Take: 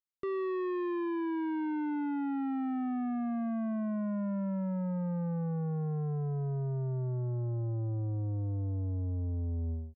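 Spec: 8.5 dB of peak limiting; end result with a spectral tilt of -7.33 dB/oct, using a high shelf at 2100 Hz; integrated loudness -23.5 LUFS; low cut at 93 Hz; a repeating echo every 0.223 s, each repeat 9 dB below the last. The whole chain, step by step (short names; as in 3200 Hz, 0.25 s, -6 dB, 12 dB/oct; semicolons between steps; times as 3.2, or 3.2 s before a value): HPF 93 Hz; high shelf 2100 Hz +6.5 dB; limiter -36 dBFS; feedback echo 0.223 s, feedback 35%, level -9 dB; gain +18 dB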